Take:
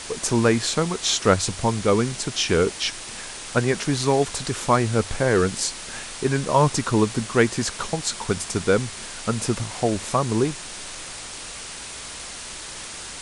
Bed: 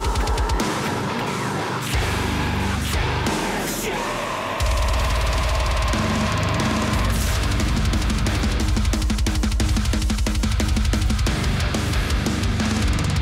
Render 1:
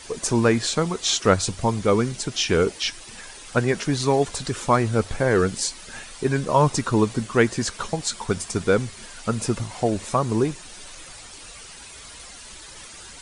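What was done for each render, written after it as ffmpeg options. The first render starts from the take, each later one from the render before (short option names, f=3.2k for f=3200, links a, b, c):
-af "afftdn=nr=10:nf=-36"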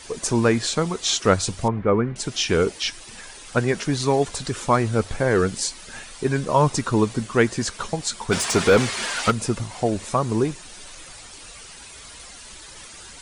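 -filter_complex "[0:a]asettb=1/sr,asplit=3[a][b][c];[a]atrim=end=1.684[d];[b]atrim=start=1.68:end=2.16,asetpts=PTS-STARTPTS,afade=t=in:d=0.004:c=qsin,afade=t=out:st=0.476:d=0.004:c=qsin,lowpass=f=2.1k:w=0.5412,lowpass=f=2.1k:w=1.3066[e];[c]atrim=start=2.156[f];[d][e]acrossfade=d=0.004:c1=hsin:c2=qsin[g];[g][f]acrossfade=d=0.004:c1=qsin:c2=hsin,asplit=3[h][i][j];[h]afade=t=out:st=8.31:d=0.02[k];[i]asplit=2[l][m];[m]highpass=f=720:p=1,volume=25dB,asoftclip=type=tanh:threshold=-7.5dB[n];[l][n]amix=inputs=2:normalize=0,lowpass=f=3.2k:p=1,volume=-6dB,afade=t=in:st=8.31:d=0.02,afade=t=out:st=9.3:d=0.02[o];[j]afade=t=in:st=9.3:d=0.02[p];[k][o][p]amix=inputs=3:normalize=0"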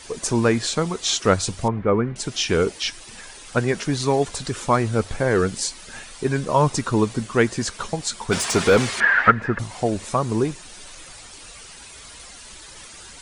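-filter_complex "[0:a]asettb=1/sr,asplit=3[a][b][c];[a]atrim=end=9.004[d];[b]atrim=start=9:end=9.59,asetpts=PTS-STARTPTS,afade=t=in:d=0.004:c=qsin,afade=t=out:st=0.586:d=0.004:c=qsin,lowpass=f=1.7k:t=q:w=8.5[e];[c]atrim=start=9.586[f];[d][e]acrossfade=d=0.004:c1=hsin:c2=qsin[g];[g][f]acrossfade=d=0.004:c1=qsin:c2=hsin"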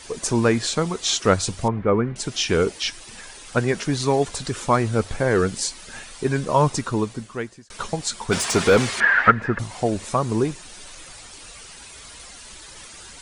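-filter_complex "[0:a]asplit=2[a][b];[a]atrim=end=7.7,asetpts=PTS-STARTPTS,afade=t=out:st=6.62:d=1.08[c];[b]atrim=start=7.7,asetpts=PTS-STARTPTS,afade=t=in:d=0.004:c=hsin[d];[c][d]concat=n=2:v=0:a=1"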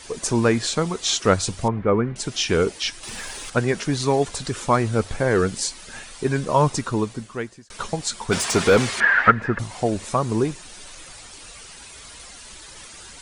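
-filter_complex "[0:a]asettb=1/sr,asplit=3[a][b][c];[a]atrim=end=3.034[d];[b]atrim=start=3.03:end=3.5,asetpts=PTS-STARTPTS,afade=t=in:d=0.004:c=qsin,afade=t=out:st=0.466:d=0.004:c=qsin,aeval=exprs='0.0447*sin(PI/2*1.58*val(0)/0.0447)':c=same[e];[c]atrim=start=3.496[f];[d][e]acrossfade=d=0.004:c1=hsin:c2=qsin[g];[g][f]acrossfade=d=0.004:c1=qsin:c2=hsin"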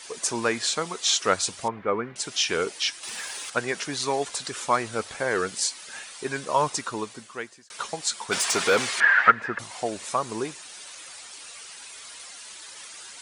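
-af "highpass=f=900:p=1"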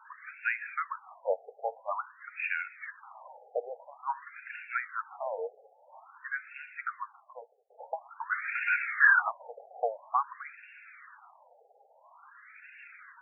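-af "asoftclip=type=tanh:threshold=-11dB,afftfilt=real='re*between(b*sr/1024,580*pow(2000/580,0.5+0.5*sin(2*PI*0.49*pts/sr))/1.41,580*pow(2000/580,0.5+0.5*sin(2*PI*0.49*pts/sr))*1.41)':imag='im*between(b*sr/1024,580*pow(2000/580,0.5+0.5*sin(2*PI*0.49*pts/sr))/1.41,580*pow(2000/580,0.5+0.5*sin(2*PI*0.49*pts/sr))*1.41)':win_size=1024:overlap=0.75"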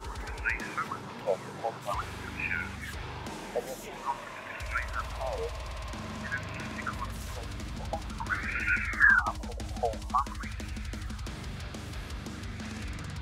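-filter_complex "[1:a]volume=-18dB[a];[0:a][a]amix=inputs=2:normalize=0"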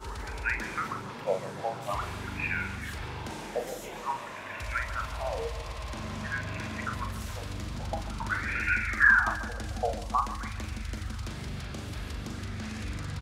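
-filter_complex "[0:a]asplit=2[a][b];[b]adelay=41,volume=-7dB[c];[a][c]amix=inputs=2:normalize=0,aecho=1:1:142|284|426|568|710:0.2|0.0978|0.0479|0.0235|0.0115"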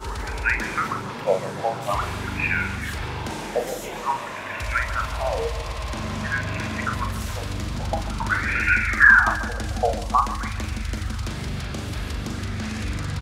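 -af "volume=8dB,alimiter=limit=-3dB:level=0:latency=1"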